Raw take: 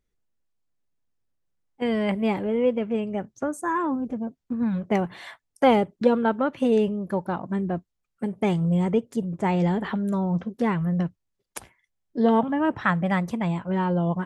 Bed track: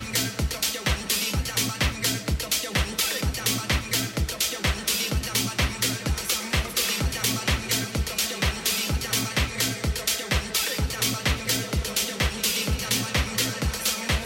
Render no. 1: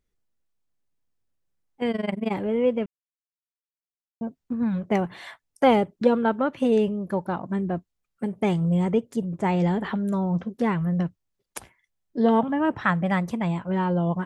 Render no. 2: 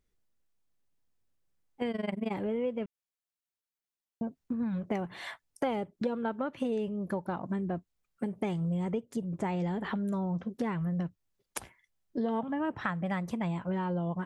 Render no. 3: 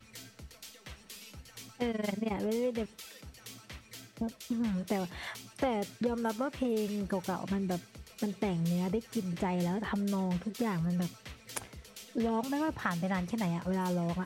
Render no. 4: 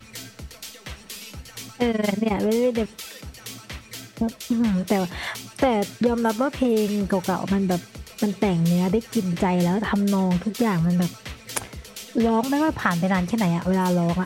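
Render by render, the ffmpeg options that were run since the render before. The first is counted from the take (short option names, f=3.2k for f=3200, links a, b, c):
-filter_complex "[0:a]asettb=1/sr,asplit=3[a][b][c];[a]atrim=end=1.914[d];[b]atrim=start=1.91:end=2.32,asetpts=PTS-STARTPTS,afade=t=in:d=0.004:c=qsin,afade=t=out:st=0.406:d=0.004:c=qsin,tremolo=f=22:d=0.919[e];[c]atrim=start=2.316[f];[d][e]acrossfade=d=0.004:c1=hsin:c2=qsin[g];[g][f]acrossfade=d=0.004:c1=qsin:c2=hsin,asplit=3[h][i][j];[h]atrim=end=2.86,asetpts=PTS-STARTPTS,afade=t=out:st=2.856:d=0.004:c=hsin[k];[i]atrim=start=2.86:end=4.21,asetpts=PTS-STARTPTS,volume=0[l];[j]atrim=start=4.21,asetpts=PTS-STARTPTS,afade=t=in:d=0.004:c=hsin[m];[k][l][m]concat=n=3:v=0:a=1"
-af "acompressor=threshold=-31dB:ratio=4"
-filter_complex "[1:a]volume=-23.5dB[a];[0:a][a]amix=inputs=2:normalize=0"
-af "volume=11dB"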